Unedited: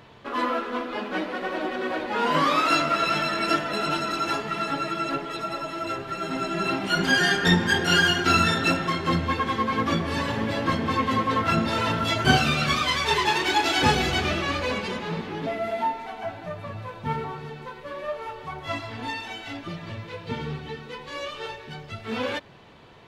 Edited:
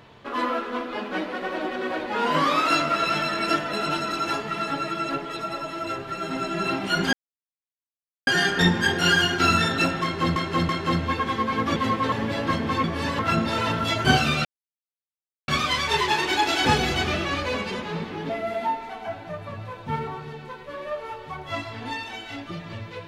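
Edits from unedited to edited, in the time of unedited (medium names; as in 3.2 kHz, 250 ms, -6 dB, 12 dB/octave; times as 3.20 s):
7.13 s: insert silence 1.14 s
8.89–9.22 s: loop, 3 plays
9.96–10.31 s: swap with 11.03–11.39 s
12.65 s: insert silence 1.03 s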